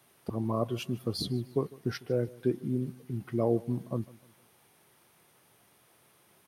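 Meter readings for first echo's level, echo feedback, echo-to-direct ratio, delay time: -21.5 dB, 39%, -21.0 dB, 151 ms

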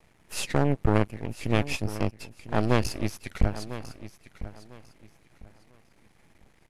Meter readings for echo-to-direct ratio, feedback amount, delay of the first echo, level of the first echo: -13.5 dB, 25%, 1000 ms, -14.0 dB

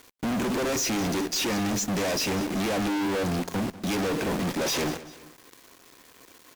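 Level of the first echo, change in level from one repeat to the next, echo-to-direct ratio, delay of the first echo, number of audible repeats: -17.0 dB, -6.5 dB, -16.0 dB, 195 ms, 2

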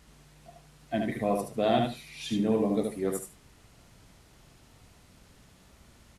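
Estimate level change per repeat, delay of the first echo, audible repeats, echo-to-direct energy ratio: -15.0 dB, 74 ms, 2, -4.0 dB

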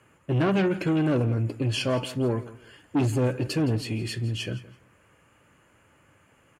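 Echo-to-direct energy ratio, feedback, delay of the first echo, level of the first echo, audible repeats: -17.5 dB, 22%, 167 ms, -17.5 dB, 2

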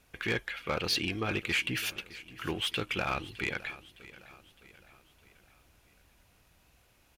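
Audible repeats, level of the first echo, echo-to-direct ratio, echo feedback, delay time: 3, -18.0 dB, -17.0 dB, 49%, 611 ms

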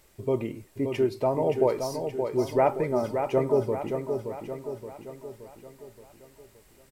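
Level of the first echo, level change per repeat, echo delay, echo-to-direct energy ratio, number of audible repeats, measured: -6.5 dB, -5.5 dB, 573 ms, -5.0 dB, 6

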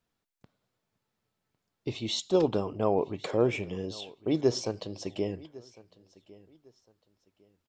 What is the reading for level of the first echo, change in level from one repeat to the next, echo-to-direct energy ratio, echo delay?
-21.5 dB, -11.5 dB, -21.0 dB, 1104 ms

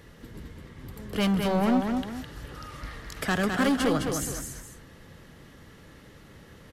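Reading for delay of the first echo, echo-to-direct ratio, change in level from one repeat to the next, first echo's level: 210 ms, -4.5 dB, -9.0 dB, -5.0 dB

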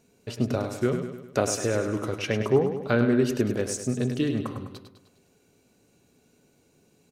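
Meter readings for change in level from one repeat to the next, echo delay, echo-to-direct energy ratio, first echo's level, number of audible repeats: -5.5 dB, 102 ms, -6.5 dB, -8.0 dB, 5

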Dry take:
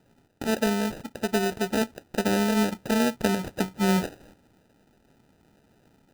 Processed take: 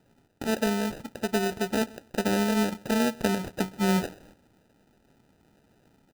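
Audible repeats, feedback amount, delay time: 1, no regular repeats, 130 ms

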